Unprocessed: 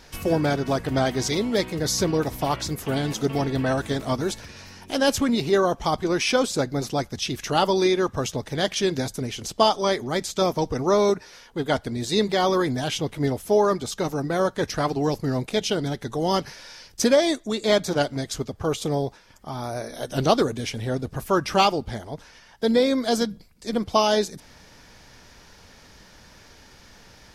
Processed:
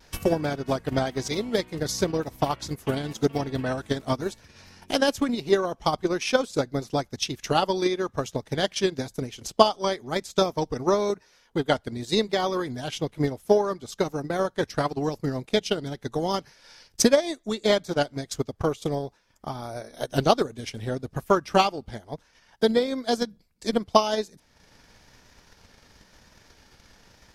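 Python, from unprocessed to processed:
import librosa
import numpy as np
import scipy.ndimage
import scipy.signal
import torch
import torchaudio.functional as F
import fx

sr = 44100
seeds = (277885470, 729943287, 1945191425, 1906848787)

y = fx.dmg_crackle(x, sr, seeds[0], per_s=11.0, level_db=-53.0)
y = fx.vibrato(y, sr, rate_hz=1.0, depth_cents=32.0)
y = fx.transient(y, sr, attack_db=10, sustain_db=-7)
y = y * 10.0 ** (-6.0 / 20.0)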